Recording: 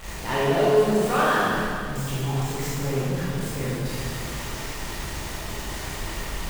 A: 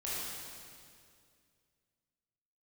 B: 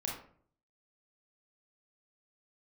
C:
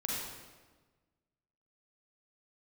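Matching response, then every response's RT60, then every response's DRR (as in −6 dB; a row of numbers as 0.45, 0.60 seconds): A; 2.2, 0.55, 1.3 seconds; −9.0, −2.5, −4.0 decibels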